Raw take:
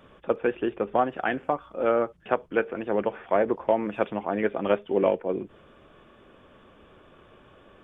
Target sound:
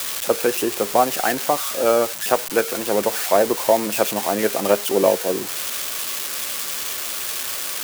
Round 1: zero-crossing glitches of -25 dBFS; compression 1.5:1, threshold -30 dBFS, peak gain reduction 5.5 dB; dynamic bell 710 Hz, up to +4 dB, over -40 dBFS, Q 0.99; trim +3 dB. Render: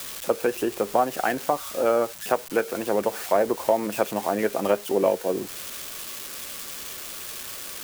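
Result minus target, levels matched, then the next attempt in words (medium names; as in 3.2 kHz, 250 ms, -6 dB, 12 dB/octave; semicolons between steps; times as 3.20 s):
zero-crossing glitches: distortion -9 dB; compression: peak gain reduction +5.5 dB
zero-crossing glitches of -16 dBFS; dynamic bell 710 Hz, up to +4 dB, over -40 dBFS, Q 0.99; trim +3 dB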